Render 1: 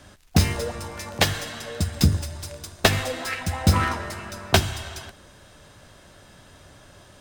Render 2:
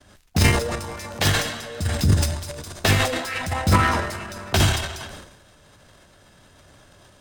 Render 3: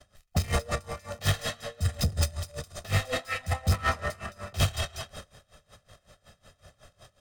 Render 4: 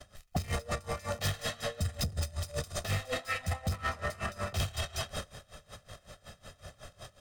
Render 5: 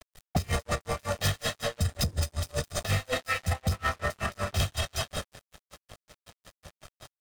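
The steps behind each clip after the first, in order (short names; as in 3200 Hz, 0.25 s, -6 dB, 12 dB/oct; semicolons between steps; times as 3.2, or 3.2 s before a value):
expander -45 dBFS; transient shaper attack -5 dB, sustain +12 dB
soft clip -18.5 dBFS, distortion -9 dB; comb 1.6 ms, depth 64%; dB-linear tremolo 5.4 Hz, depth 22 dB; gain -1 dB
compressor 12:1, threshold -35 dBFS, peak gain reduction 16.5 dB; gain +5.5 dB
crossover distortion -46.5 dBFS; gain +6 dB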